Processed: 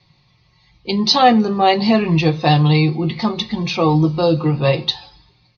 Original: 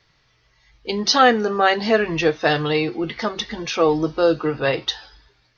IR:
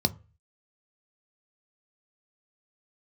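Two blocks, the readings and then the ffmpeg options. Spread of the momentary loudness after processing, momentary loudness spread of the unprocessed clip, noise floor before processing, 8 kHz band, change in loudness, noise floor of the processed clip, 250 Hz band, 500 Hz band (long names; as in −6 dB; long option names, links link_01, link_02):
9 LU, 12 LU, −62 dBFS, can't be measured, +3.5 dB, −58 dBFS, +7.5 dB, 0.0 dB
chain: -filter_complex "[0:a]lowpass=5800,aecho=1:1:5.6:0.39,asplit=2[link_01][link_02];[1:a]atrim=start_sample=2205[link_03];[link_02][link_03]afir=irnorm=-1:irlink=0,volume=-5.5dB[link_04];[link_01][link_04]amix=inputs=2:normalize=0,volume=-3dB"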